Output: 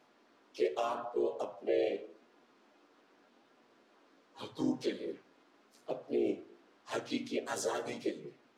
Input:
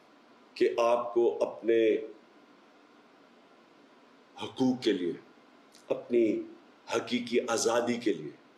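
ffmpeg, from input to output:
ffmpeg -i in.wav -filter_complex "[0:a]flanger=delay=7.7:depth=3.6:regen=1:speed=0.84:shape=triangular,asplit=3[link_01][link_02][link_03];[link_02]asetrate=52444,aresample=44100,atempo=0.840896,volume=-2dB[link_04];[link_03]asetrate=58866,aresample=44100,atempo=0.749154,volume=-8dB[link_05];[link_01][link_04][link_05]amix=inputs=3:normalize=0,volume=-7dB" out.wav

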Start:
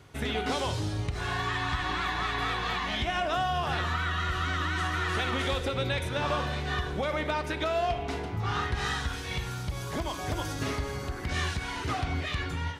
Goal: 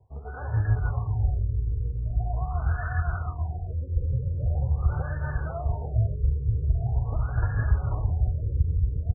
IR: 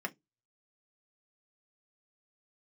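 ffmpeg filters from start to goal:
-filter_complex "[0:a]tremolo=f=5:d=0.63,dynaudnorm=framelen=370:gausssize=3:maxgain=14dB,firequalizer=gain_entry='entry(100,0);entry(200,-17);entry(330,-18);entry(490,-2);entry(1100,-10);entry(2300,13);entry(4000,-20);entry(6800,14);entry(13000,9)':delay=0.05:min_phase=1,aecho=1:1:690|1173|1511|1748|1913:0.631|0.398|0.251|0.158|0.1,acrossover=split=180|3000[link_01][link_02][link_03];[link_02]acompressor=threshold=-30dB:ratio=6[link_04];[link_01][link_04][link_03]amix=inputs=3:normalize=0,equalizer=frequency=550:width_type=o:width=0.27:gain=-9,atempo=1.4,bandreject=frequency=82.7:width_type=h:width=4,bandreject=frequency=165.4:width_type=h:width=4,bandreject=frequency=248.1:width_type=h:width=4,bandreject=frequency=330.8:width_type=h:width=4,bandreject=frequency=413.5:width_type=h:width=4,bandreject=frequency=496.2:width_type=h:width=4,bandreject=frequency=578.9:width_type=h:width=4,bandreject=frequency=661.6:width_type=h:width=4,bandreject=frequency=744.3:width_type=h:width=4,bandreject=frequency=827:width_type=h:width=4,bandreject=frequency=909.7:width_type=h:width=4,bandreject=frequency=992.4:width_type=h:width=4,bandreject=frequency=1075.1:width_type=h:width=4,bandreject=frequency=1157.8:width_type=h:width=4,bandreject=frequency=1240.5:width_type=h:width=4,bandreject=frequency=1323.2:width_type=h:width=4,bandreject=frequency=1405.9:width_type=h:width=4,bandreject=frequency=1488.6:width_type=h:width=4,bandreject=frequency=1571.3:width_type=h:width=4,bandreject=frequency=1654:width_type=h:width=4,bandreject=frequency=1736.7:width_type=h:width=4,bandreject=frequency=1819.4:width_type=h:width=4,bandreject=frequency=1902.1:width_type=h:width=4,bandreject=frequency=1984.8:width_type=h:width=4,bandreject=frequency=2067.5:width_type=h:width=4,bandreject=frequency=2150.2:width_type=h:width=4,bandreject=frequency=2232.9:width_type=h:width=4,bandreject=frequency=2315.6:width_type=h:width=4,bandreject=frequency=2398.3:width_type=h:width=4,bandreject=frequency=2481:width_type=h:width=4,bandreject=frequency=2563.7:width_type=h:width=4,bandreject=frequency=2646.4:width_type=h:width=4,bandreject=frequency=2729.1:width_type=h:width=4,afftfilt=real='re*lt(b*sr/1024,530*pow(1800/530,0.5+0.5*sin(2*PI*0.43*pts/sr)))':imag='im*lt(b*sr/1024,530*pow(1800/530,0.5+0.5*sin(2*PI*0.43*pts/sr)))':win_size=1024:overlap=0.75"

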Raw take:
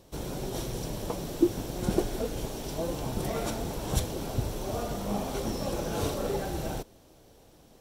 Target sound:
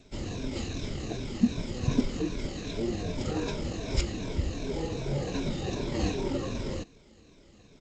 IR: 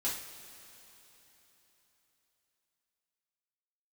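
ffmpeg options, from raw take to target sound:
-af "afftfilt=real='re*pow(10,9/40*sin(2*PI*(1.6*log(max(b,1)*sr/1024/100)/log(2)-(-2.6)*(pts-256)/sr)))':imag='im*pow(10,9/40*sin(2*PI*(1.6*log(max(b,1)*sr/1024/100)/log(2)-(-2.6)*(pts-256)/sr)))':win_size=1024:overlap=0.75,asetrate=30296,aresample=44100,atempo=1.45565" -ar 16000 -c:a g722

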